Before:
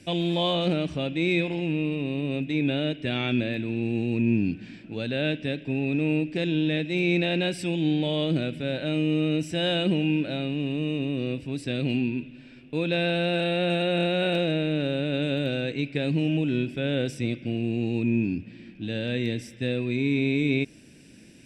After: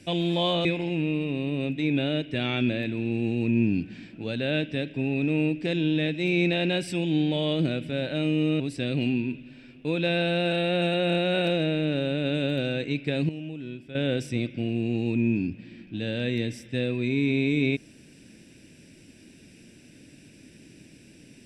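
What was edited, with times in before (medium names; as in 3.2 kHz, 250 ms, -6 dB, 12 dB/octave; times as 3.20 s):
0.65–1.36 s: delete
9.31–11.48 s: delete
16.17–16.83 s: gain -11.5 dB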